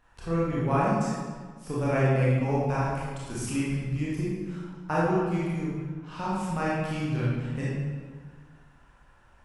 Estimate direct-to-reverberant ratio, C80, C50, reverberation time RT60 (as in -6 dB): -8.5 dB, 0.5 dB, -3.0 dB, 1.6 s